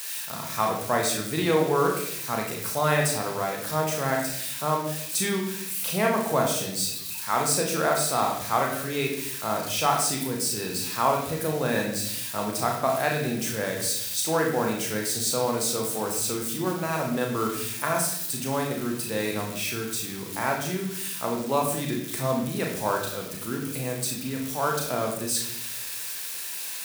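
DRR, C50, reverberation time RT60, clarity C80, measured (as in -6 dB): -0.5 dB, 4.5 dB, 0.75 s, 7.5 dB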